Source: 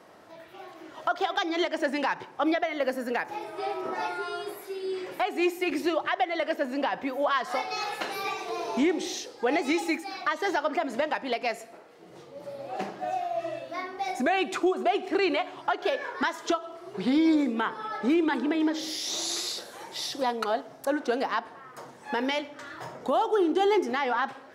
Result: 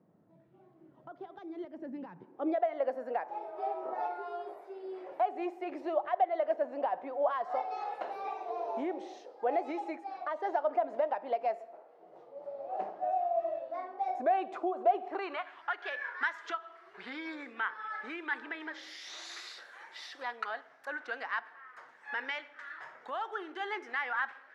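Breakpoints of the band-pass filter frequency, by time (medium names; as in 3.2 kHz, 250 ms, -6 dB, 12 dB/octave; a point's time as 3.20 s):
band-pass filter, Q 2.4
2.12 s 160 Hz
2.62 s 680 Hz
15.01 s 680 Hz
15.53 s 1.7 kHz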